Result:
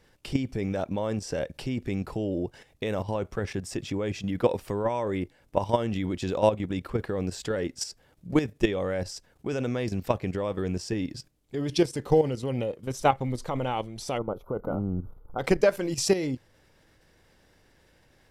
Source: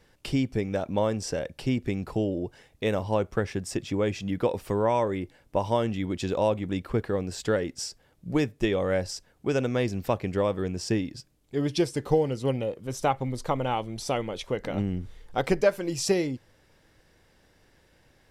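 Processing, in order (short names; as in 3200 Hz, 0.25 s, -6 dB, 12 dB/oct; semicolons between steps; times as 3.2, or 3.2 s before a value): spectral gain 14.18–15.39, 1500–11000 Hz -27 dB; level quantiser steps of 11 dB; gain +4.5 dB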